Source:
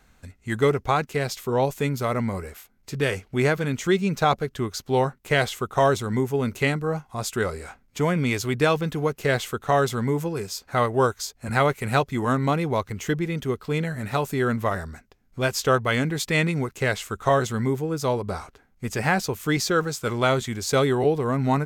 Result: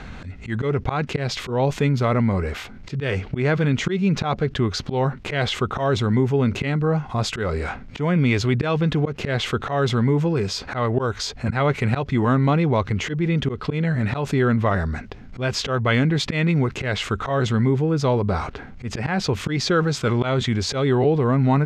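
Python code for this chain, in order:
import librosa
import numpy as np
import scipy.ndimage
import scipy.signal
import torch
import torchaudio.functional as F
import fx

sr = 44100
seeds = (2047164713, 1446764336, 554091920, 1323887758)

y = fx.auto_swell(x, sr, attack_ms=200.0)
y = scipy.signal.sosfilt(scipy.signal.cheby1(2, 1.0, 3400.0, 'lowpass', fs=sr, output='sos'), y)
y = fx.peak_eq(y, sr, hz=130.0, db=5.5, octaves=2.6)
y = fx.env_flatten(y, sr, amount_pct=50)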